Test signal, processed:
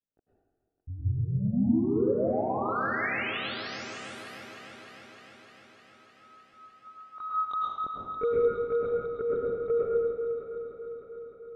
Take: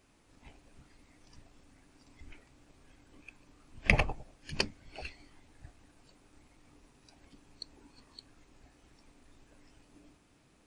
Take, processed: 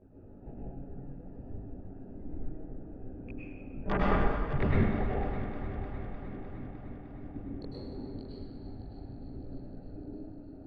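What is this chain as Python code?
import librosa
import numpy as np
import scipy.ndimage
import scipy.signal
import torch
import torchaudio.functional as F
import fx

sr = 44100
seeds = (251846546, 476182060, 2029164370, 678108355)

p1 = fx.wiener(x, sr, points=41)
p2 = scipy.signal.sosfilt(scipy.signal.butter(2, 1000.0, 'lowpass', fs=sr, output='sos'), p1)
p3 = fx.dereverb_blind(p2, sr, rt60_s=0.51)
p4 = fx.env_lowpass_down(p3, sr, base_hz=450.0, full_db=-42.0)
p5 = fx.low_shelf(p4, sr, hz=180.0, db=-6.0)
p6 = fx.rider(p5, sr, range_db=4, speed_s=0.5)
p7 = p5 + (p6 * librosa.db_to_amplitude(1.0))
p8 = fx.fold_sine(p7, sr, drive_db=15, ceiling_db=-14.5)
p9 = fx.chorus_voices(p8, sr, voices=2, hz=0.32, base_ms=19, depth_ms=3.6, mix_pct=65)
p10 = p9 + fx.echo_heads(p9, sr, ms=304, heads='first and second', feedback_pct=63, wet_db=-14.0, dry=0)
p11 = fx.rev_plate(p10, sr, seeds[0], rt60_s=1.4, hf_ratio=0.95, predelay_ms=90, drr_db=-5.5)
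y = p11 * librosa.db_to_amplitude(-9.0)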